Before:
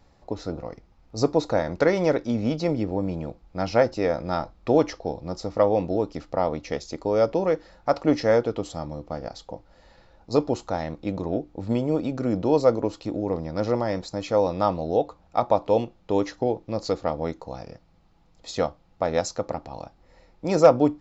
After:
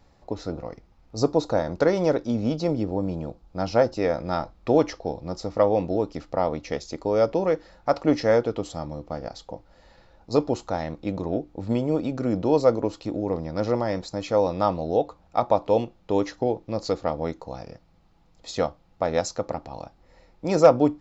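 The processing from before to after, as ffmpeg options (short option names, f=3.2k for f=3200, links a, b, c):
-filter_complex "[0:a]asettb=1/sr,asplit=3[a][b][c];[a]atrim=end=1.174[d];[b]atrim=start=1.17:end=3.97,asetpts=PTS-STARTPTS,afade=t=in:d=0.004:c=qsin,afade=t=out:st=2.796:d=0.004:c=qsin,equalizer=f=2.1k:w=2.1:g=-6.5[e];[c]atrim=start=3.966[f];[d][e]acrossfade=d=0.004:c1=hsin:c2=qsin[g];[g][f]acrossfade=d=0.004:c1=qsin:c2=hsin"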